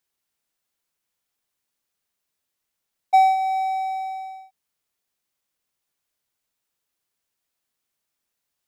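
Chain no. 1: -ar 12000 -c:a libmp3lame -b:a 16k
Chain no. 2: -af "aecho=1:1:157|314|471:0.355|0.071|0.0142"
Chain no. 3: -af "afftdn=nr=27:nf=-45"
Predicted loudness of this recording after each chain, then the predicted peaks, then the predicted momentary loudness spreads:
-22.0, -21.0, -21.5 LUFS; -8.0, -7.0, -7.5 dBFS; 16, 16, 16 LU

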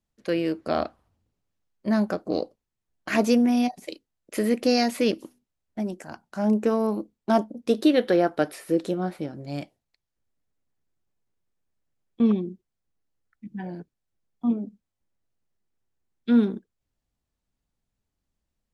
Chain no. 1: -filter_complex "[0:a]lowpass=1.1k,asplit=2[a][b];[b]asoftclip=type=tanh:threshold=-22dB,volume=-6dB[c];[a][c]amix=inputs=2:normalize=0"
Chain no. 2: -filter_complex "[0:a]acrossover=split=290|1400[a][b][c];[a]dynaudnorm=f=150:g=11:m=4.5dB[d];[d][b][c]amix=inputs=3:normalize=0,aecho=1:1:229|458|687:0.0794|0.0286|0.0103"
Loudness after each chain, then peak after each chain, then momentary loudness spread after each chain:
-23.5, -23.0 LUFS; -8.5, -7.0 dBFS; 16, 18 LU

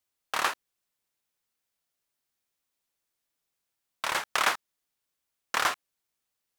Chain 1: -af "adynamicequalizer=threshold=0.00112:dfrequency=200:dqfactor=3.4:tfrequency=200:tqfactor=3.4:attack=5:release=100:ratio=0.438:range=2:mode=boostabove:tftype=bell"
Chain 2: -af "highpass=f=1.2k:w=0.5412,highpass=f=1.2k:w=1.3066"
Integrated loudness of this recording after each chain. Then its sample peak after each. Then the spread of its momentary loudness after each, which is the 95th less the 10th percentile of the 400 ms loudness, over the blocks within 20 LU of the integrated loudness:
-29.5, -30.5 LUFS; -9.5, -9.5 dBFS; 10, 10 LU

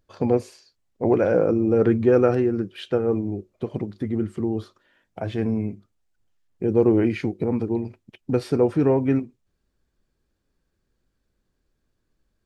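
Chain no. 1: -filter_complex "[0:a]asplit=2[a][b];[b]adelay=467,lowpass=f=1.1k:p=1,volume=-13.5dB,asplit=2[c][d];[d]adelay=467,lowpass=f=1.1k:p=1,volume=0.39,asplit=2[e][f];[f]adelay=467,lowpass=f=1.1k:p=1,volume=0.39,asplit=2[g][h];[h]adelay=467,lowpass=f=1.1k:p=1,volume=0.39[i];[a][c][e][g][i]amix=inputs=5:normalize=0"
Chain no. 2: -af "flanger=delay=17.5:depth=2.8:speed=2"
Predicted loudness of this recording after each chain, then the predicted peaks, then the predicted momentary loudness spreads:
-23.0, -25.5 LUFS; -6.0, -9.0 dBFS; 19, 12 LU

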